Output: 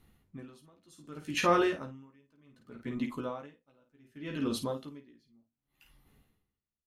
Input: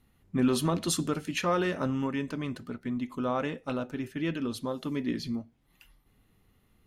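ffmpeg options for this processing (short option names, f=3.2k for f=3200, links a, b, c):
-filter_complex "[0:a]asplit=2[a][b];[b]aecho=0:1:14|52:0.596|0.398[c];[a][c]amix=inputs=2:normalize=0,aeval=exprs='val(0)*pow(10,-36*(0.5-0.5*cos(2*PI*0.66*n/s))/20)':c=same,volume=1dB"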